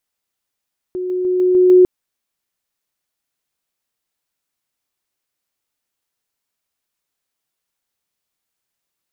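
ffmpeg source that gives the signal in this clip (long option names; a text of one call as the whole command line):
ffmpeg -f lavfi -i "aevalsrc='pow(10,(-20+3*floor(t/0.15))/20)*sin(2*PI*365*t)':duration=0.9:sample_rate=44100" out.wav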